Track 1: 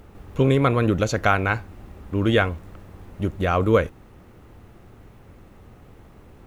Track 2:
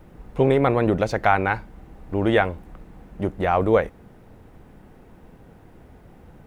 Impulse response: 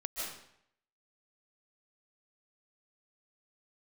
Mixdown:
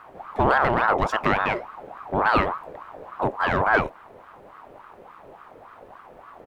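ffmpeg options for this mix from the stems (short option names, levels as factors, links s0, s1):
-filter_complex "[0:a]deesser=0.95,lowpass=f=1900:p=1,asoftclip=type=tanh:threshold=0.075,volume=1.26[s0];[1:a]adelay=0.8,volume=0.841[s1];[s0][s1]amix=inputs=2:normalize=0,aeval=exprs='val(0)*sin(2*PI*840*n/s+840*0.45/3.5*sin(2*PI*3.5*n/s))':c=same"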